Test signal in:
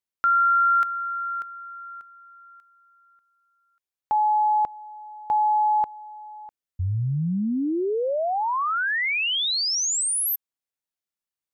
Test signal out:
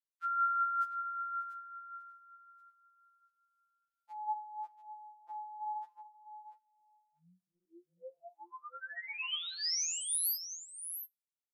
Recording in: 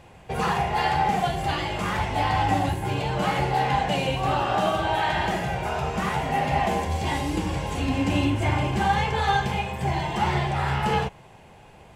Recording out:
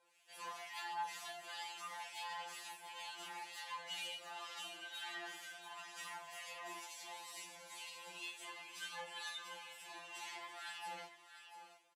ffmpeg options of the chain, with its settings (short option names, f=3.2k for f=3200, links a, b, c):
-filter_complex "[0:a]aderivative,acrossover=split=1600[a][b];[a]aeval=exprs='val(0)*(1-0.7/2+0.7/2*cos(2*PI*2.1*n/s))':c=same[c];[b]aeval=exprs='val(0)*(1-0.7/2-0.7/2*cos(2*PI*2.1*n/s))':c=same[d];[c][d]amix=inputs=2:normalize=0,aecho=1:1:689:0.299,aresample=32000,aresample=44100,flanger=delay=9.8:depth=8.8:regen=-82:speed=0.46:shape=sinusoidal,highpass=f=210:w=0.5412,highpass=f=210:w=1.3066,highshelf=f=9.5k:g=-8.5,flanger=delay=2:depth=9.5:regen=58:speed=0.2:shape=triangular,afftfilt=real='re*2.83*eq(mod(b,8),0)':imag='im*2.83*eq(mod(b,8),0)':win_size=2048:overlap=0.75,volume=7dB"